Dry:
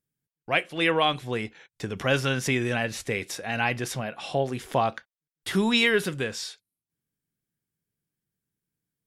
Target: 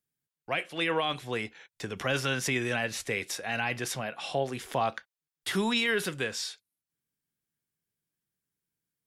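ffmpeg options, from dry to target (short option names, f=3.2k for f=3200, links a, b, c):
-filter_complex "[0:a]lowshelf=f=440:g=-7,acrossover=split=290[a][b];[b]alimiter=limit=-19dB:level=0:latency=1:release=16[c];[a][c]amix=inputs=2:normalize=0"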